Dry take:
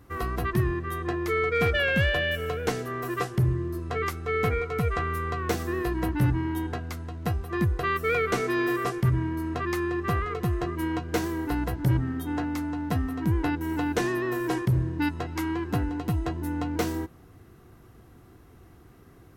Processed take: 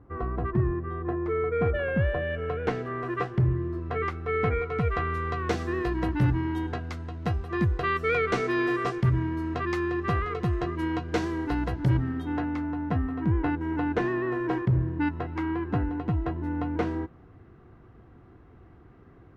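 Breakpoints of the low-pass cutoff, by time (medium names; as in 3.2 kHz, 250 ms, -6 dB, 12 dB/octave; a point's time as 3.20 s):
2.19 s 1.1 kHz
2.67 s 2.4 kHz
4.49 s 2.4 kHz
5.35 s 4.9 kHz
11.93 s 4.9 kHz
12.70 s 2.1 kHz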